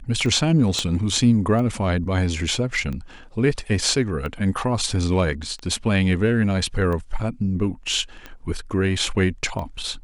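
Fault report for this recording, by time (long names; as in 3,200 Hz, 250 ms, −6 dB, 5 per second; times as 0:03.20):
scratch tick 45 rpm −20 dBFS
0:00.79: click −11 dBFS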